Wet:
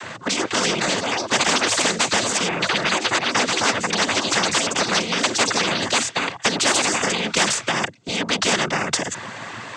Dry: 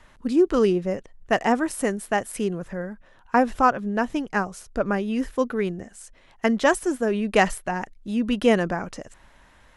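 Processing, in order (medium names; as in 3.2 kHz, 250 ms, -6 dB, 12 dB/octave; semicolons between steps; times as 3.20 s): ever faster or slower copies 405 ms, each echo +5 st, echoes 3, each echo -6 dB; noise-vocoded speech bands 16; spectrum-flattening compressor 4:1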